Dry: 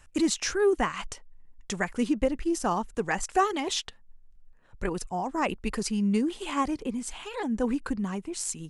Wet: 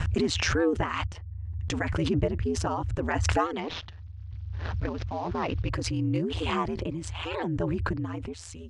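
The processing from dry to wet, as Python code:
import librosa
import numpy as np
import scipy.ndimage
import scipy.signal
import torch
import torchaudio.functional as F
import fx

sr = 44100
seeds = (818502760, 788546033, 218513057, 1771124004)

y = fx.cvsd(x, sr, bps=32000, at=(3.61, 5.69))
y = scipy.signal.sosfilt(scipy.signal.butter(2, 3900.0, 'lowpass', fs=sr, output='sos'), y)
y = fx.low_shelf(y, sr, hz=62.0, db=6.5)
y = fx.notch(y, sr, hz=2000.0, q=28.0)
y = y * np.sin(2.0 * np.pi * 83.0 * np.arange(len(y)) / sr)
y = fx.pre_swell(y, sr, db_per_s=20.0)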